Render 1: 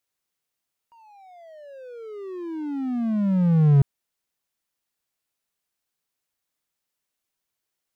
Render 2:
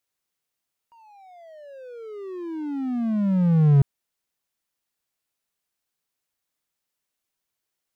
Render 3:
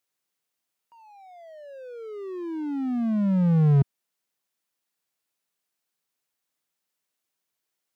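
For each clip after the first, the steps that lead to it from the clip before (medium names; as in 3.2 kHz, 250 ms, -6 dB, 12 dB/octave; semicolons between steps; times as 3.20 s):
no audible change
high-pass 130 Hz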